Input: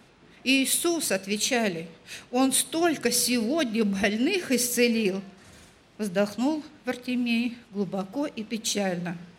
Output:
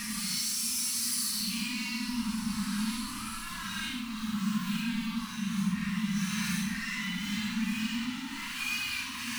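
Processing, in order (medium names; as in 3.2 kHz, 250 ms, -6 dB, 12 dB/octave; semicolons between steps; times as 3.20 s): jump at every zero crossing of -31.5 dBFS; recorder AGC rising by 56 dB/s; bass shelf 250 Hz -6.5 dB; reverse echo 139 ms -8.5 dB; peak limiter -18 dBFS, peak gain reduction 9 dB; saturation -28 dBFS, distortion -11 dB; Paulstretch 7×, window 0.05 s, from 3.07 s; elliptic band-stop 230–1000 Hz, stop band 40 dB; repeats whose band climbs or falls 534 ms, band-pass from 490 Hz, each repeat 1.4 oct, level -3 dB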